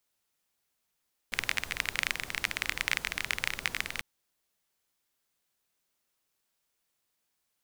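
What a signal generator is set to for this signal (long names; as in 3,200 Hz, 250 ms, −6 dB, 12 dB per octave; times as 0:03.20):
rain-like ticks over hiss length 2.69 s, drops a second 23, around 2,100 Hz, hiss −11 dB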